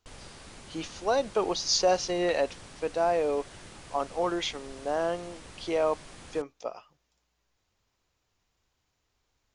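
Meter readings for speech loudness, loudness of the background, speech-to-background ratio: −29.5 LKFS, −47.5 LKFS, 18.0 dB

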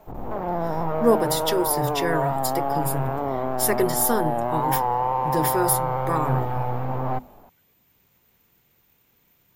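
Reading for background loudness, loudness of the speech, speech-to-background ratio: −26.0 LKFS, −25.0 LKFS, 1.0 dB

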